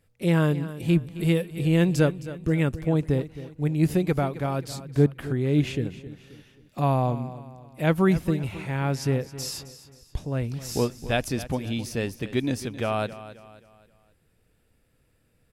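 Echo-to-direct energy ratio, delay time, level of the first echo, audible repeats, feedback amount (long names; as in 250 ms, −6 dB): −14.0 dB, 266 ms, −15.0 dB, 3, 41%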